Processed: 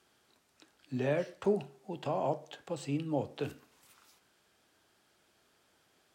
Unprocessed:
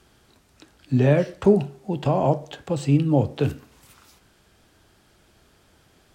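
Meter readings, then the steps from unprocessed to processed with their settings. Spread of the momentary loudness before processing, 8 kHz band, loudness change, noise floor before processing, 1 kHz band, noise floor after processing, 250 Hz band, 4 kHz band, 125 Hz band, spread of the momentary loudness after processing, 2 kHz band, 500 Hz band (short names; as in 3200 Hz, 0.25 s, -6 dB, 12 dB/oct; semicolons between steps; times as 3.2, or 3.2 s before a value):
9 LU, -9.0 dB, -13.5 dB, -60 dBFS, -10.0 dB, -71 dBFS, -14.5 dB, -9.0 dB, -18.5 dB, 9 LU, -9.0 dB, -11.5 dB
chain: HPF 400 Hz 6 dB/oct; gain -9 dB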